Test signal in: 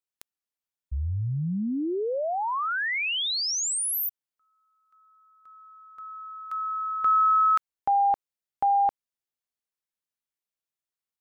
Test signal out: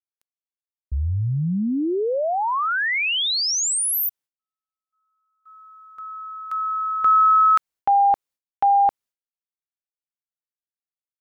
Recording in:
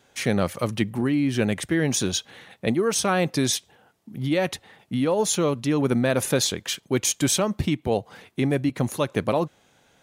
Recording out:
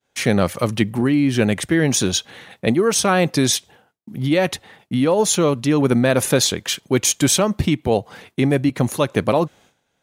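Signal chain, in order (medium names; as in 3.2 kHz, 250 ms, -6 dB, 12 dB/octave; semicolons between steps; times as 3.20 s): expander -49 dBFS; trim +5.5 dB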